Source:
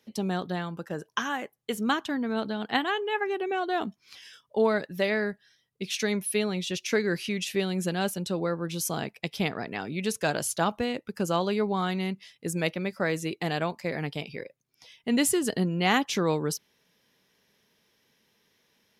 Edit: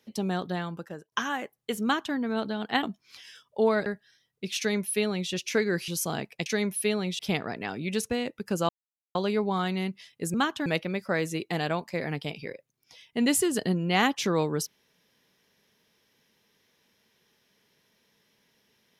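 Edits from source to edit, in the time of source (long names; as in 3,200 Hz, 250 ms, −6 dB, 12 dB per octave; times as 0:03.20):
0:00.73–0:01.12: fade out, to −24 dB
0:01.83–0:02.15: duplicate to 0:12.57
0:02.83–0:03.81: remove
0:04.84–0:05.24: remove
0:05.96–0:06.69: duplicate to 0:09.30
0:07.26–0:08.72: remove
0:10.21–0:10.79: remove
0:11.38: splice in silence 0.46 s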